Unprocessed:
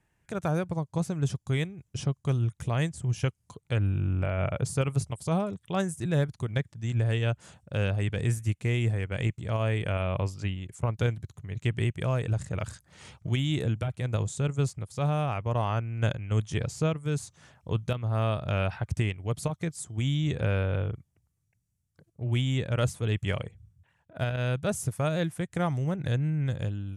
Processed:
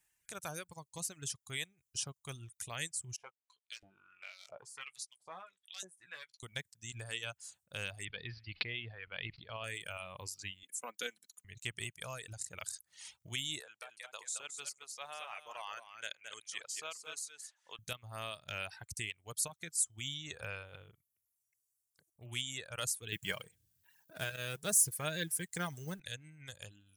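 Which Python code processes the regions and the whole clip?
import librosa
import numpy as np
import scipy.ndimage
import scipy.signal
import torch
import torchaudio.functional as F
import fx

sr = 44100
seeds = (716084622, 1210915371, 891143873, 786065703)

y = fx.chain(x, sr, fx.clip_hard(threshold_db=-20.5),
    fx.filter_lfo_bandpass(shape='saw_up', hz=1.5, low_hz=550.0, high_hz=6000.0, q=1.6),
    fx.doubler(ms=16.0, db=-8), at=(3.16, 6.43))
y = fx.chain(y, sr, fx.steep_lowpass(hz=4800.0, slope=96),
    fx.sustainer(db_per_s=52.0), at=(8.05, 9.64))
y = fx.chain(y, sr, fx.highpass(hz=210.0, slope=24),
    fx.comb(ms=4.0, depth=0.57), at=(10.63, 11.45))
y = fx.chain(y, sr, fx.highpass(hz=630.0, slope=12),
    fx.high_shelf(hz=7400.0, db=-11.0),
    fx.echo_single(ms=219, db=-5.0), at=(13.6, 17.79))
y = fx.chain(y, sr, fx.law_mismatch(coded='mu'),
    fx.comb(ms=6.4, depth=0.31),
    fx.small_body(hz=(200.0, 380.0, 1600.0), ring_ms=25, db=8), at=(23.12, 26.0))
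y = scipy.signal.lfilter([1.0, -0.97], [1.0], y)
y = fx.dereverb_blind(y, sr, rt60_s=1.6)
y = fx.low_shelf(y, sr, hz=63.0, db=10.0)
y = F.gain(torch.from_numpy(y), 6.5).numpy()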